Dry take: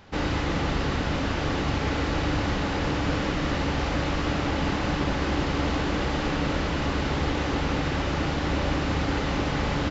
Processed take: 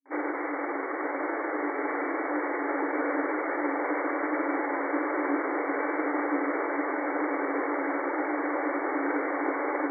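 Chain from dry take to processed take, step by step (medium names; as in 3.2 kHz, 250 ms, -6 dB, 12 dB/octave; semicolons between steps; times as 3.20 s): granulator, pitch spread up and down by 0 st; echo that smears into a reverb 919 ms, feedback 64%, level -5 dB; FFT band-pass 270–2300 Hz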